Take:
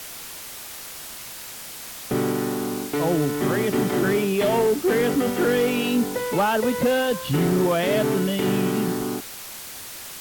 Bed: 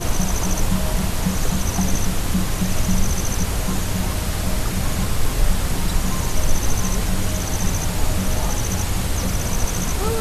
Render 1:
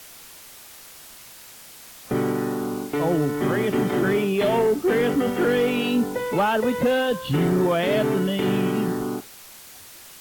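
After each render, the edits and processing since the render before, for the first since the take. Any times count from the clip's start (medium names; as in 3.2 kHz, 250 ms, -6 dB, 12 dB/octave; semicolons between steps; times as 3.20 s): noise print and reduce 7 dB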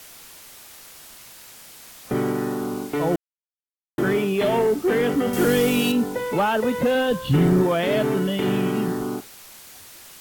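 3.16–3.98 s: mute; 5.33–5.92 s: tone controls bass +7 dB, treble +12 dB; 6.95–7.63 s: bass shelf 200 Hz +7.5 dB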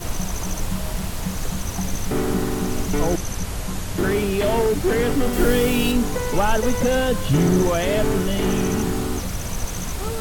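add bed -5.5 dB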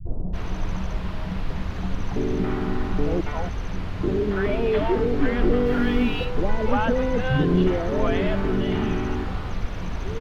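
distance through air 310 m; three bands offset in time lows, mids, highs 50/330 ms, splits 150/620 Hz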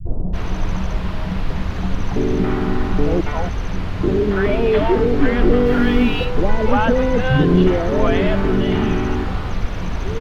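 trim +6 dB; peak limiter -2 dBFS, peak gain reduction 1 dB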